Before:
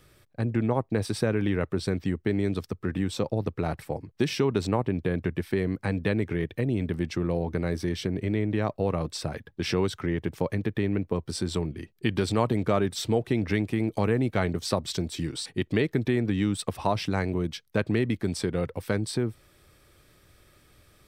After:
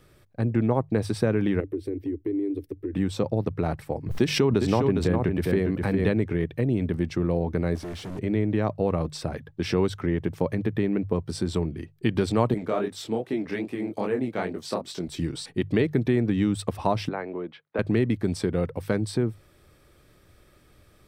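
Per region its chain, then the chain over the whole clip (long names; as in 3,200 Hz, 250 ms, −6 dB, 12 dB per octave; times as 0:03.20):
0:01.60–0:02.93: drawn EQ curve 110 Hz 0 dB, 200 Hz −28 dB, 290 Hz +13 dB, 420 Hz +6 dB, 700 Hz −10 dB, 1,100 Hz −23 dB, 2,000 Hz −5 dB, 5,000 Hz −13 dB, 7,500 Hz −12 dB, 11,000 Hz +1 dB + downward compressor 2 to 1, threshold −36 dBFS
0:04.06–0:06.09: single-tap delay 408 ms −5.5 dB + background raised ahead of every attack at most 64 dB per second
0:07.75–0:08.19: linear delta modulator 64 kbit/s, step −42.5 dBFS + gain into a clipping stage and back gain 34.5 dB
0:12.54–0:15.08: high-pass filter 220 Hz + chorus effect 2.5 Hz, delay 19.5 ms, depth 7.9 ms
0:17.09–0:17.79: high-pass filter 420 Hz + high-frequency loss of the air 460 metres + multiband upward and downward compressor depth 40%
whole clip: tilt shelving filter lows +3 dB, about 1,400 Hz; mains-hum notches 50/100/150 Hz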